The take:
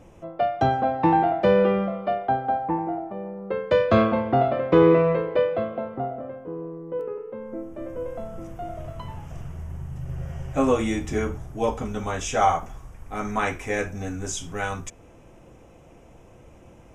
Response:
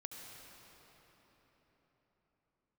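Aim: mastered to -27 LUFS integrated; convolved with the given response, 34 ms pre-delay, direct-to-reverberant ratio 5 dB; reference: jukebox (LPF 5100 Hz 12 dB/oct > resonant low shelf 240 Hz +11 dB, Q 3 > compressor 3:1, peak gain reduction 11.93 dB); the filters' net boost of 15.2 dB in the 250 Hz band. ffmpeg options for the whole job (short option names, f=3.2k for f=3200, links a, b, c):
-filter_complex "[0:a]equalizer=f=250:t=o:g=8,asplit=2[a][b];[1:a]atrim=start_sample=2205,adelay=34[c];[b][c]afir=irnorm=-1:irlink=0,volume=-2dB[d];[a][d]amix=inputs=2:normalize=0,lowpass=5.1k,lowshelf=f=240:t=q:w=3:g=11,acompressor=threshold=-17dB:ratio=3,volume=-6dB"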